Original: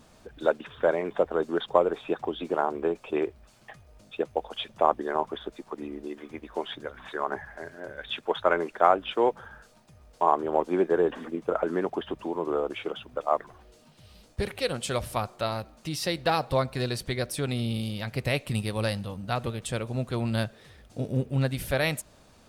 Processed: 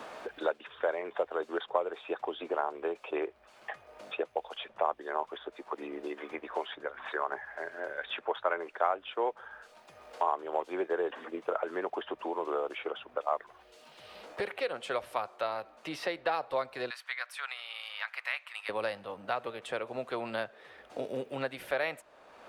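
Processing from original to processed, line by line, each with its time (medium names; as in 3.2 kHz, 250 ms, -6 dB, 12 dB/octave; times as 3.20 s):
16.90–18.69 s: high-pass 1.1 kHz 24 dB/octave
whole clip: three-band isolator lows -23 dB, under 390 Hz, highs -13 dB, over 3.3 kHz; three bands compressed up and down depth 70%; trim -3 dB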